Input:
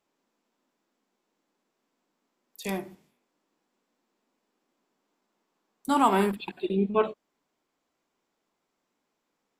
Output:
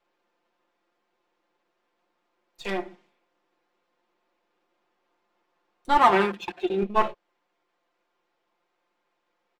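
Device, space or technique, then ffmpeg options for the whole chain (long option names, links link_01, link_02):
crystal radio: -filter_complex "[0:a]highpass=390,lowpass=3400,aeval=exprs='if(lt(val(0),0),0.447*val(0),val(0))':channel_layout=same,asettb=1/sr,asplit=3[link_01][link_02][link_03];[link_01]atrim=end=5.974[link_04];[link_02]atrim=start=5.97:end=6.83,asetpts=PTS-STARTPTS,afade=type=in:duration=0.004:curve=qsin,afade=type=out:start_time=0.856:duration=0.004:curve=qsin,highpass=68[link_05];[link_03]atrim=start=6.826[link_06];[link_04][link_05]acrossfade=duration=0.004:curve1=hsin:curve2=qsin[link_07];[link_07][link_06]acrossfade=duration=0.004:curve1=qsin:curve2=hsin,aecho=1:1:5.7:0.77,volume=6dB"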